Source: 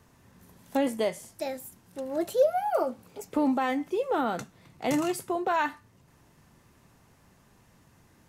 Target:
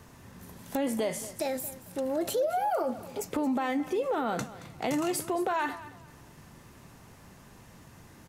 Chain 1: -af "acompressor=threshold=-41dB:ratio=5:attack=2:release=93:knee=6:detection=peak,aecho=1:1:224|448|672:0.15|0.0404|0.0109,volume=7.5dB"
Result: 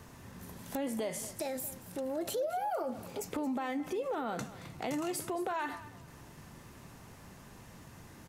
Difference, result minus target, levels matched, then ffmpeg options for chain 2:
downward compressor: peak gain reduction +6 dB
-af "acompressor=threshold=-33.5dB:ratio=5:attack=2:release=93:knee=6:detection=peak,aecho=1:1:224|448|672:0.15|0.0404|0.0109,volume=7.5dB"

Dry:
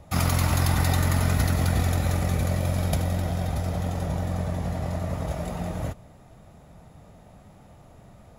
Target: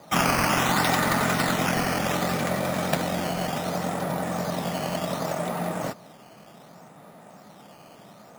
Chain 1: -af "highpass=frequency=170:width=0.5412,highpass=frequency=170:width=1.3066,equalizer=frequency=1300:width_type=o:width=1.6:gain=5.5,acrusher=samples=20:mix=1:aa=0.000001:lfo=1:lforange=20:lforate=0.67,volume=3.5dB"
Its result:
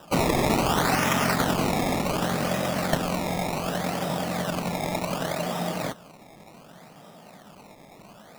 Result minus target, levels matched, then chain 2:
sample-and-hold swept by an LFO: distortion +7 dB
-af "highpass=frequency=170:width=0.5412,highpass=frequency=170:width=1.3066,equalizer=frequency=1300:width_type=o:width=1.6:gain=5.5,acrusher=samples=8:mix=1:aa=0.000001:lfo=1:lforange=8:lforate=0.67,volume=3.5dB"

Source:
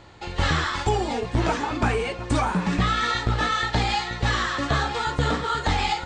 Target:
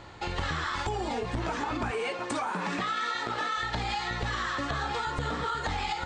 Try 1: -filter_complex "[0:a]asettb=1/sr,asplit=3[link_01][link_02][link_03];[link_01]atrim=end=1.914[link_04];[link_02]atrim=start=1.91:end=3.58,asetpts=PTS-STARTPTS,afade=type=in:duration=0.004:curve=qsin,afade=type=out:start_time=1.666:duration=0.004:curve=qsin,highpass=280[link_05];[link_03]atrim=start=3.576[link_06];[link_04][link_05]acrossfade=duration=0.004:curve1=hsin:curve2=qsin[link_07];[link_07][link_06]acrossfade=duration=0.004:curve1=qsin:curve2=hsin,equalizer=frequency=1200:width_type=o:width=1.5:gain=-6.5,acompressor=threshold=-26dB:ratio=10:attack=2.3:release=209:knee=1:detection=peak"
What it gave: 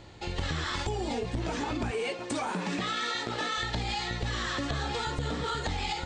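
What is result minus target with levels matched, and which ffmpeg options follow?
1,000 Hz band −3.0 dB
-filter_complex "[0:a]asettb=1/sr,asplit=3[link_01][link_02][link_03];[link_01]atrim=end=1.914[link_04];[link_02]atrim=start=1.91:end=3.58,asetpts=PTS-STARTPTS,afade=type=in:duration=0.004:curve=qsin,afade=type=out:start_time=1.666:duration=0.004:curve=qsin,highpass=280[link_05];[link_03]atrim=start=3.576[link_06];[link_04][link_05]acrossfade=duration=0.004:curve1=hsin:curve2=qsin[link_07];[link_07][link_06]acrossfade=duration=0.004:curve1=qsin:curve2=hsin,equalizer=frequency=1200:width_type=o:width=1.5:gain=3,acompressor=threshold=-26dB:ratio=10:attack=2.3:release=209:knee=1:detection=peak"

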